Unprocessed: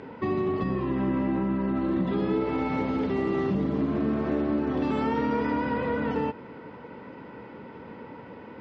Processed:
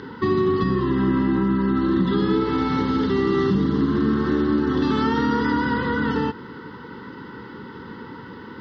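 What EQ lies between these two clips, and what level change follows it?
peaking EQ 380 Hz +4 dB 0.34 oct; treble shelf 2.3 kHz +9.5 dB; static phaser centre 2.4 kHz, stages 6; +7.5 dB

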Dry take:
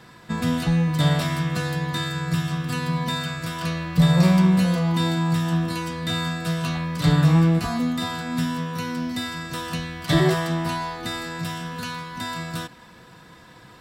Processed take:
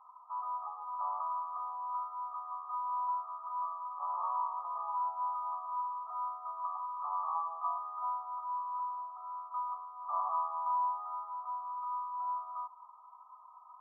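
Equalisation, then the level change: steep high-pass 880 Hz 48 dB/octave; brick-wall FIR low-pass 1.3 kHz; 0.0 dB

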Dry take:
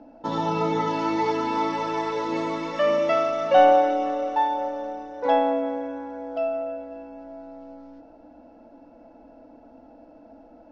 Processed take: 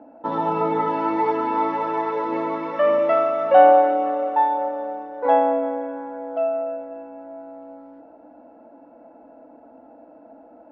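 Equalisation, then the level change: high-pass 390 Hz 6 dB/octave; low-pass 1.6 kHz 12 dB/octave; +5.0 dB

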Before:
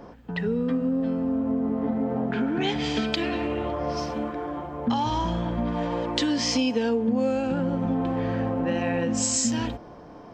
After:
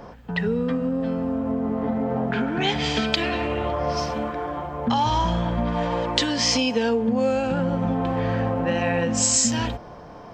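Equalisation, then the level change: peaking EQ 300 Hz -7.5 dB 0.94 oct; +5.5 dB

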